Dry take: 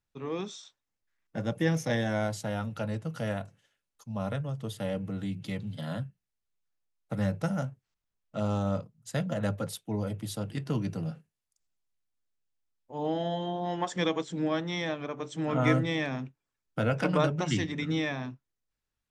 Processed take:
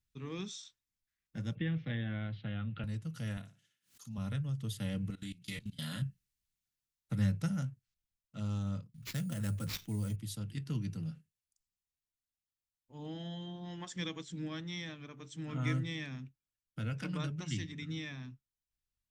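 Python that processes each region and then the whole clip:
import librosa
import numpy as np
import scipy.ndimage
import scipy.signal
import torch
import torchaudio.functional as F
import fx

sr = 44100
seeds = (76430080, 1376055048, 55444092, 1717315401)

y = fx.chain(x, sr, fx.steep_lowpass(hz=3500.0, slope=48),
    fx.notch(hz=930.0, q=6.1),
    fx.band_squash(depth_pct=70), at=(1.55, 2.84))
y = fx.chain(y, sr, fx.highpass(hz=140.0, slope=12),
    fx.room_flutter(wall_m=9.9, rt60_s=0.32),
    fx.pre_swell(db_per_s=150.0), at=(3.37, 4.18))
y = fx.chain(y, sr, fx.tilt_eq(slope=2.0),
    fx.doubler(ms=34.0, db=-5.0),
    fx.level_steps(step_db=20), at=(5.1, 6.02))
y = fx.chain(y, sr, fx.sample_hold(seeds[0], rate_hz=9300.0, jitter_pct=0),
    fx.env_flatten(amount_pct=50), at=(8.94, 10.16))
y = fx.rider(y, sr, range_db=10, speed_s=2.0)
y = fx.tone_stack(y, sr, knobs='6-0-2')
y = F.gain(torch.from_numpy(y), 10.0).numpy()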